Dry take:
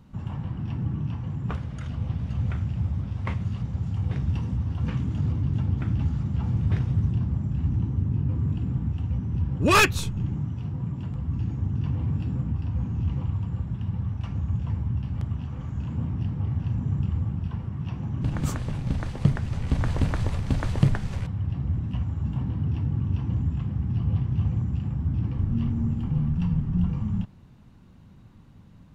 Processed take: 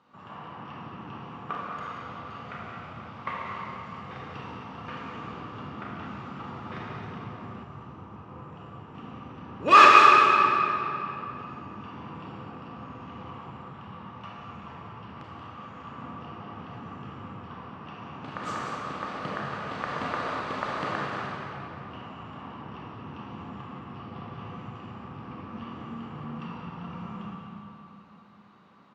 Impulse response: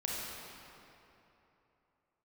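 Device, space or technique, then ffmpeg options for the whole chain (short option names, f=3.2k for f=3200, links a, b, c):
station announcement: -filter_complex "[0:a]highpass=480,lowpass=4.1k,equalizer=f=1.2k:t=o:w=0.27:g=10,aecho=1:1:180.8|218.7:0.316|0.251[a];[1:a]atrim=start_sample=2205[b];[a][b]afir=irnorm=-1:irlink=0,asettb=1/sr,asplit=3[c][d][e];[c]atrim=end=7.634[f];[d]atrim=start=7.63:end=8.95,asetpts=PTS-STARTPTS,afade=t=in:d=0.004:c=qsin,afade=t=out:st=1.316:d=0.004:c=qsin,equalizer=f=250:t=o:w=1:g=-8,equalizer=f=2k:t=o:w=1:g=-3,equalizer=f=4k:t=o:w=1:g=-4[g];[e]atrim=start=8.946[h];[f][g]acrossfade=d=0.004:c1=hsin:c2=qsin[i];[i][h]acrossfade=d=0.004:c1=qsin:c2=hsin"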